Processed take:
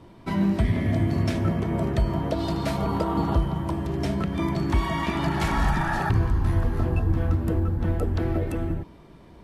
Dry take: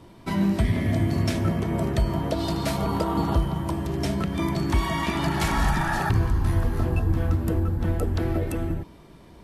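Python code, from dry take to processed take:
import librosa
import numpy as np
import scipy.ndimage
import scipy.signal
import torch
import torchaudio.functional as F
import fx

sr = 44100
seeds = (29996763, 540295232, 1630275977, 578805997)

y = fx.high_shelf(x, sr, hz=4600.0, db=-8.5)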